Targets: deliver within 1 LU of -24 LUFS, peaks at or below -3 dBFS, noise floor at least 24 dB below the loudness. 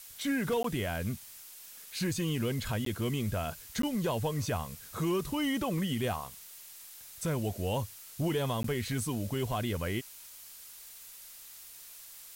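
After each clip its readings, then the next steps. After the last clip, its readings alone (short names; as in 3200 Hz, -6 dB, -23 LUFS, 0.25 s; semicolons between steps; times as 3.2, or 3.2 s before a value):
dropouts 4; longest dropout 13 ms; noise floor -50 dBFS; noise floor target -58 dBFS; loudness -33.5 LUFS; peak -21.5 dBFS; loudness target -24.0 LUFS
-> interpolate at 0.63/2.85/3.82/8.63, 13 ms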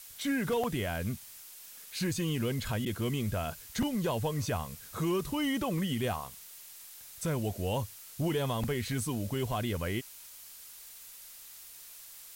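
dropouts 0; noise floor -50 dBFS; noise floor target -58 dBFS
-> denoiser 8 dB, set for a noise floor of -50 dBFS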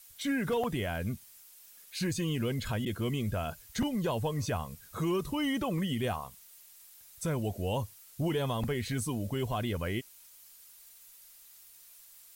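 noise floor -56 dBFS; noise floor target -58 dBFS
-> denoiser 6 dB, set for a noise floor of -56 dBFS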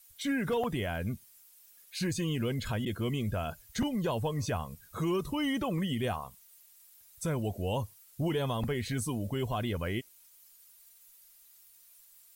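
noise floor -59 dBFS; loudness -33.5 LUFS; peak -20.5 dBFS; loudness target -24.0 LUFS
-> gain +9.5 dB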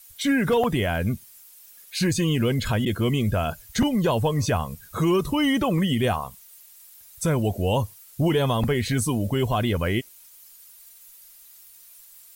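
loudness -24.0 LUFS; peak -11.0 dBFS; noise floor -50 dBFS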